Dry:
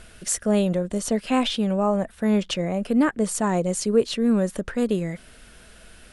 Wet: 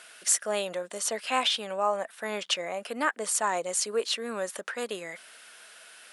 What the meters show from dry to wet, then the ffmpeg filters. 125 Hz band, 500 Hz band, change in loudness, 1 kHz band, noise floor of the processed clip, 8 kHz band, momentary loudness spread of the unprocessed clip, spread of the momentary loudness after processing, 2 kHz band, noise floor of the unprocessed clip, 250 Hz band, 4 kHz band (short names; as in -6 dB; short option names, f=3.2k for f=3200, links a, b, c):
-23.5 dB, -7.5 dB, -5.5 dB, -1.0 dB, -52 dBFS, +1.5 dB, 5 LU, 20 LU, +1.5 dB, -49 dBFS, -20.0 dB, +1.5 dB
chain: -af "highpass=810,volume=1.5dB"